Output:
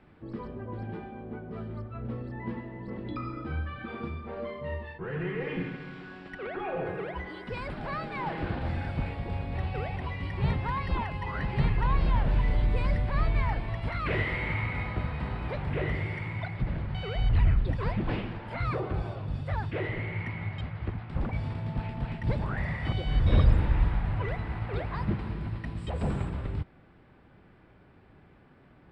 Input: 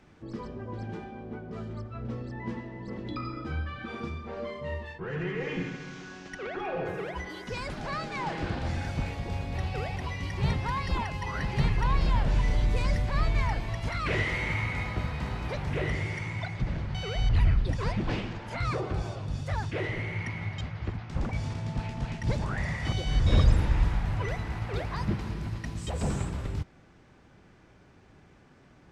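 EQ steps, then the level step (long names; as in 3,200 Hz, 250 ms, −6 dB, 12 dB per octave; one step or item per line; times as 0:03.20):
moving average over 7 samples
0.0 dB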